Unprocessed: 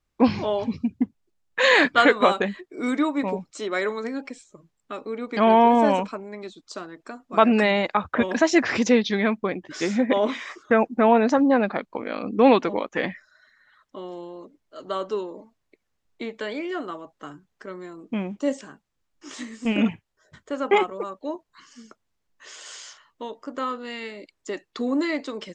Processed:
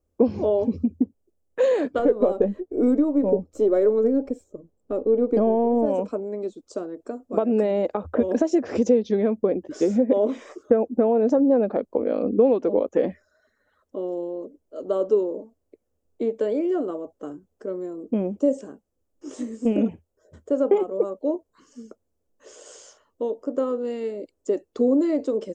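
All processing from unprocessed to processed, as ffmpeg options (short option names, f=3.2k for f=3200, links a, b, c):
-filter_complex "[0:a]asettb=1/sr,asplit=3[a][b][c];[a]atrim=end=1.994[d];[b]atrim=start=1.99:end=5.86,asetpts=PTS-STARTPTS,afade=t=in:d=0.004:c=qsin,afade=t=out:st=3.866:d=0.004:c=qsin,aeval=exprs='if(lt(val(0),0),0.708*val(0),val(0))':c=same,tiltshelf=f=1.3k:g=5.5[e];[c]atrim=start=5.856[f];[d][e]acrossfade=d=0.004:c1=hsin:c2=qsin[g];[g][f]acrossfade=d=0.004:c1=qsin:c2=hsin,equalizer=f=82:t=o:w=0.58:g=14,acompressor=threshold=-22dB:ratio=10,equalizer=f=125:t=o:w=1:g=-8,equalizer=f=250:t=o:w=1:g=5,equalizer=f=500:t=o:w=1:g=12,equalizer=f=1k:t=o:w=1:g=-6,equalizer=f=2k:t=o:w=1:g=-12,equalizer=f=4k:t=o:w=1:g=-11"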